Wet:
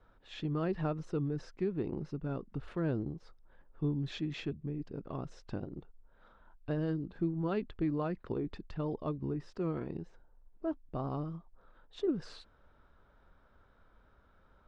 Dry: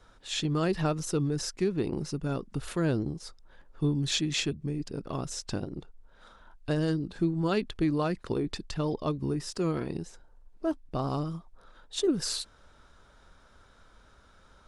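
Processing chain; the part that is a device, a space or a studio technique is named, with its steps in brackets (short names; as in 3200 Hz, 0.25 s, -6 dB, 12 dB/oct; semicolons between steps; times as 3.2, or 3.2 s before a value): phone in a pocket (LPF 3200 Hz 12 dB/oct; high shelf 2300 Hz -9 dB); gain -5.5 dB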